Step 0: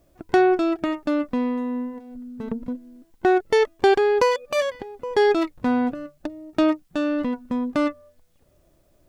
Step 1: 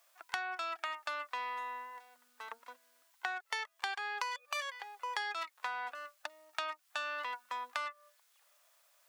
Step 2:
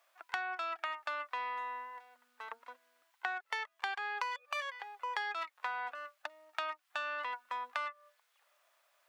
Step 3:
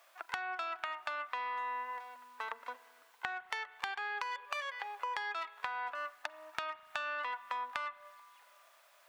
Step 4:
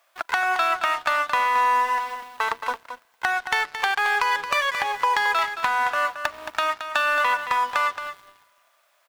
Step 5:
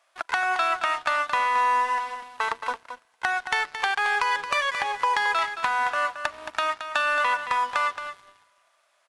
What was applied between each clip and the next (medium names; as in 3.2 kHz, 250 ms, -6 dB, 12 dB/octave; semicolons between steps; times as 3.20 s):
high-pass 970 Hz 24 dB/octave; compression 10:1, threshold -37 dBFS, peak gain reduction 16 dB; trim +2.5 dB
tone controls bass -5 dB, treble -10 dB; trim +1 dB
compression 4:1, threshold -45 dBFS, peak gain reduction 12 dB; spring tank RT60 2.6 s, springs 35/41 ms, chirp 30 ms, DRR 17 dB; trim +8 dB
waveshaping leveller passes 3; delay 222 ms -9.5 dB; trim +5.5 dB
trim -2 dB; AAC 96 kbps 24 kHz